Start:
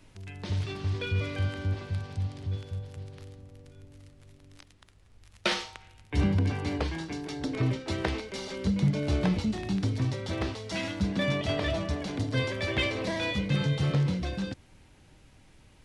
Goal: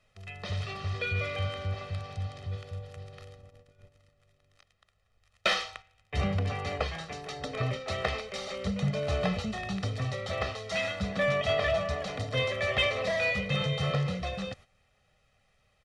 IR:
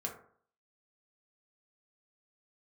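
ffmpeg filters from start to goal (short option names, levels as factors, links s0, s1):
-filter_complex "[0:a]aecho=1:1:1.6:0.91,agate=range=0.282:threshold=0.00631:ratio=16:detection=peak,asplit=2[s0][s1];[s1]highpass=f=720:p=1,volume=3.55,asoftclip=type=tanh:threshold=0.335[s2];[s0][s2]amix=inputs=2:normalize=0,lowpass=f=3000:p=1,volume=0.501,volume=0.668"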